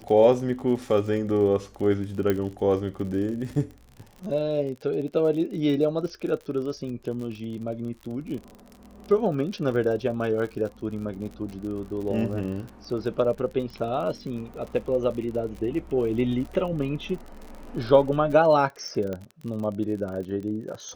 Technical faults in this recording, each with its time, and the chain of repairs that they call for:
surface crackle 51 per second −34 dBFS
0:02.30: click −12 dBFS
0:19.13: click −20 dBFS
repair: click removal

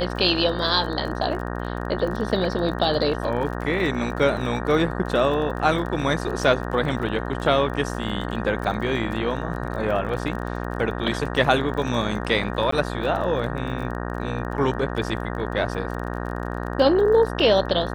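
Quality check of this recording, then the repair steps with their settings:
mains buzz 60 Hz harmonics 31 −29 dBFS
surface crackle 28 per second −31 dBFS
0:12.71–0:12.72: drop-out 14 ms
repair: click removal
hum removal 60 Hz, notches 31
repair the gap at 0:12.71, 14 ms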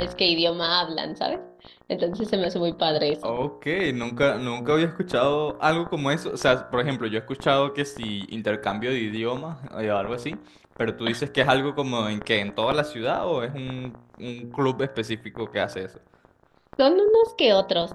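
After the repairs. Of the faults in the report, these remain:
none of them is left

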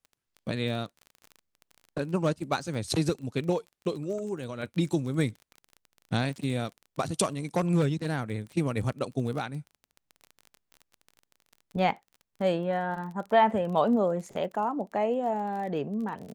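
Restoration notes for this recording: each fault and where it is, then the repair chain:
surface crackle 26 per second −37 dBFS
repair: click removal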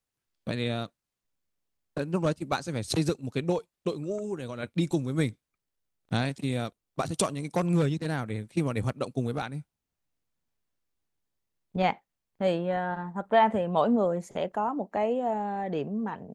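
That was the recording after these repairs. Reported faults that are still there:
none of them is left

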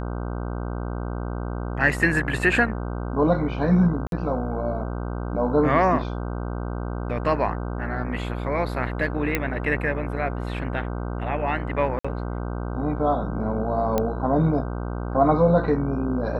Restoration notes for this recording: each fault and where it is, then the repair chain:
mains buzz 60 Hz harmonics 26 −29 dBFS
0:04.07–0:04.12: drop-out 52 ms
0:09.35: click −8 dBFS
0:11.99–0:12.04: drop-out 55 ms
0:13.98: click −9 dBFS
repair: click removal
hum removal 60 Hz, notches 26
repair the gap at 0:04.07, 52 ms
repair the gap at 0:11.99, 55 ms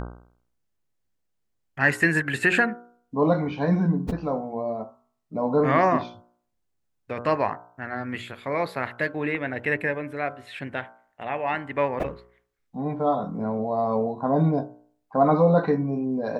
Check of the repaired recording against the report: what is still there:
0:09.35: click

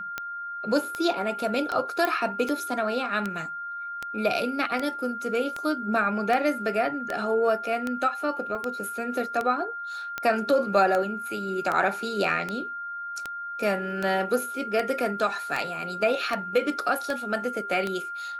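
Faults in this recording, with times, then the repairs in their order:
scratch tick 78 rpm −15 dBFS
whistle 1,400 Hz −32 dBFS
0:02.05: click −12 dBFS
0:08.55: drop-out 2.4 ms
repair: click removal
notch filter 1,400 Hz, Q 30
repair the gap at 0:08.55, 2.4 ms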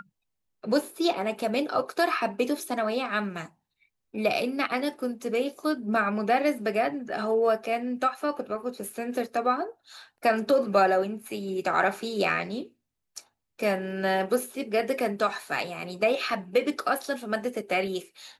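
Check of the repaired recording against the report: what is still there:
none of them is left

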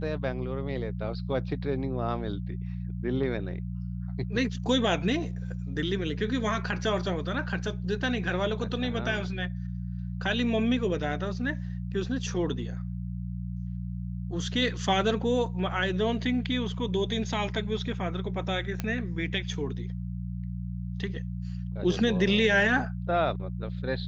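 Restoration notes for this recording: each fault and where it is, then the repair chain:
mains hum 60 Hz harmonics 3 −34 dBFS
0:18.80: click −16 dBFS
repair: click removal
hum removal 60 Hz, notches 3

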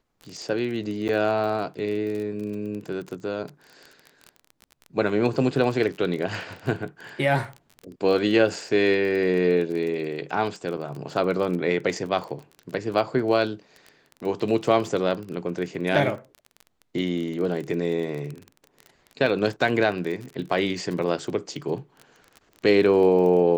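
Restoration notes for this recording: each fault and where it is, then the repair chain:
surface crackle 26 per second −31 dBFS
0:01.08–0:01.09: drop-out 9.3 ms
0:10.77–0:10.78: drop-out 6.6 ms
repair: click removal
repair the gap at 0:01.08, 9.3 ms
repair the gap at 0:10.77, 6.6 ms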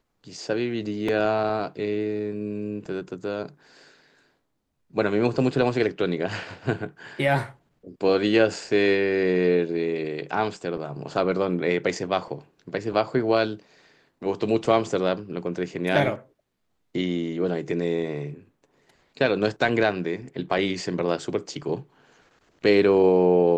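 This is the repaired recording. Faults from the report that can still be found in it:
none of them is left

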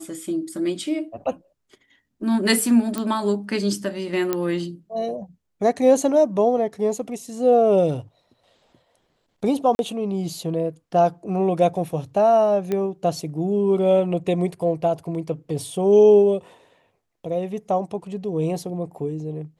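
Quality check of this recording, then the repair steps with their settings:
0:02.98: click −12 dBFS
0:04.33: click −9 dBFS
0:09.75–0:09.79: drop-out 41 ms
0:12.72: click −13 dBFS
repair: click removal
repair the gap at 0:09.75, 41 ms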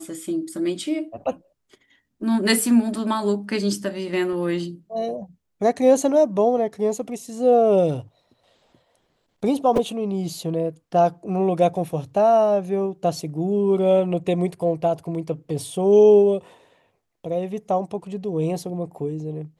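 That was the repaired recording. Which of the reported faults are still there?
0:02.98: click
0:04.33: click

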